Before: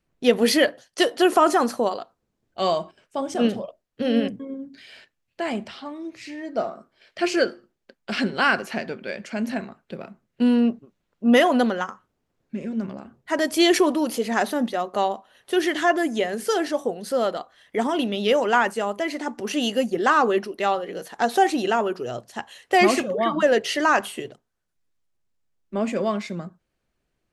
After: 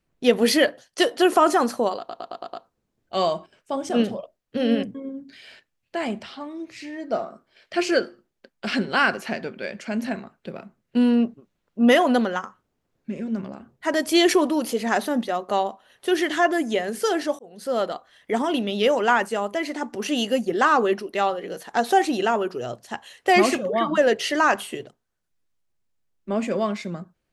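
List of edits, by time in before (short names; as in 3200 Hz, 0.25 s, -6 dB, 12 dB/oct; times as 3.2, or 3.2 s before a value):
1.98 stutter 0.11 s, 6 plays
16.84–17.27 fade in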